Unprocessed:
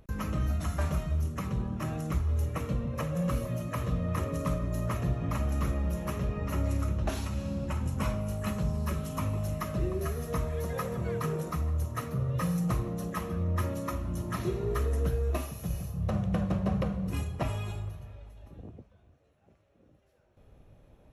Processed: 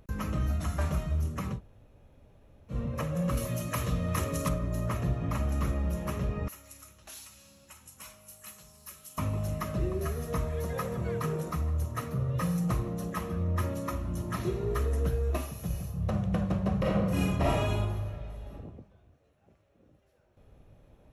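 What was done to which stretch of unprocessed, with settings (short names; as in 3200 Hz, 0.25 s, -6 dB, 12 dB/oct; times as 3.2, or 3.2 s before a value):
1.56–2.73 room tone, crossfade 0.10 s
3.37–4.49 high shelf 2500 Hz +11 dB
6.48–9.18 pre-emphasis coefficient 0.97
16.79–18.53 reverb throw, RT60 0.98 s, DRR -6 dB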